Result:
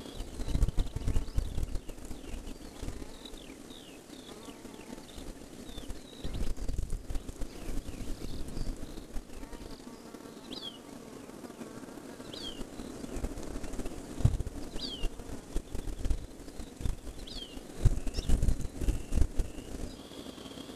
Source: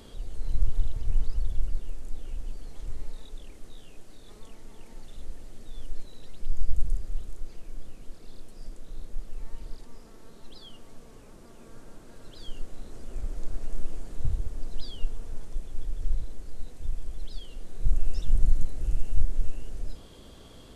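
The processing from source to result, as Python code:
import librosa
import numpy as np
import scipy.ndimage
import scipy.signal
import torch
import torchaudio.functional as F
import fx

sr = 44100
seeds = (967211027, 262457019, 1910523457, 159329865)

y = fx.highpass(x, sr, hz=200.0, slope=6)
y = fx.peak_eq(y, sr, hz=270.0, db=7.5, octaves=0.35)
y = fx.transient(y, sr, attack_db=11, sustain_db=-5)
y = fx.vibrato(y, sr, rate_hz=1.6, depth_cents=43.0)
y = fx.band_squash(y, sr, depth_pct=100, at=(6.24, 8.88))
y = F.gain(torch.from_numpy(y), 5.0).numpy()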